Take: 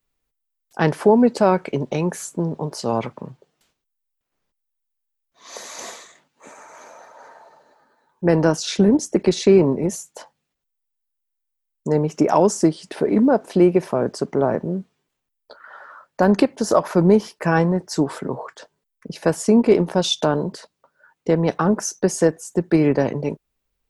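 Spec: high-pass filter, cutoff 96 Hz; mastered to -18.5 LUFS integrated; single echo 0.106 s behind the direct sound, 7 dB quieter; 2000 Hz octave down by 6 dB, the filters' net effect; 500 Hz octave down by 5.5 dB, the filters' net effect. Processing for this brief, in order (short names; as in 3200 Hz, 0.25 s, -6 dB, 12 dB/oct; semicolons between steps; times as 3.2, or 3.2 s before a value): HPF 96 Hz; bell 500 Hz -7 dB; bell 2000 Hz -8 dB; echo 0.106 s -7 dB; gain +3.5 dB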